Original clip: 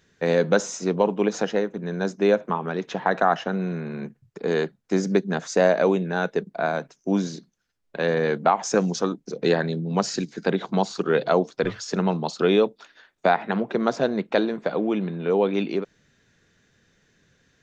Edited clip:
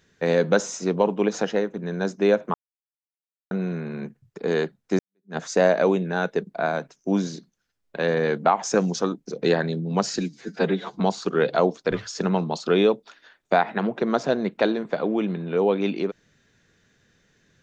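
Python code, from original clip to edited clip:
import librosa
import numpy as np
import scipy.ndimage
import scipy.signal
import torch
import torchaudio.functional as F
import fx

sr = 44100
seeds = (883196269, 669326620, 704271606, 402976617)

y = fx.edit(x, sr, fx.silence(start_s=2.54, length_s=0.97),
    fx.fade_in_span(start_s=4.99, length_s=0.38, curve='exp'),
    fx.stretch_span(start_s=10.19, length_s=0.54, factor=1.5), tone=tone)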